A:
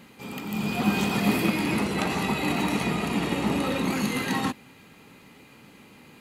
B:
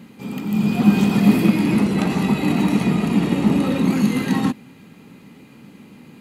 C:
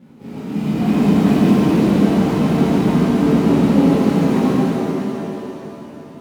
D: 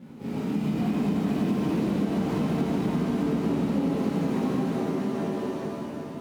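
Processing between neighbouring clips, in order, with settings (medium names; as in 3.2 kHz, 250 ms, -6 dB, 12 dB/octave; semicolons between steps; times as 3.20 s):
peaking EQ 200 Hz +11 dB 1.8 oct
median filter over 25 samples; pitch-shifted reverb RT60 3.3 s, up +7 st, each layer -8 dB, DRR -10.5 dB; trim -6.5 dB
compression 4:1, threshold -25 dBFS, peak gain reduction 14.5 dB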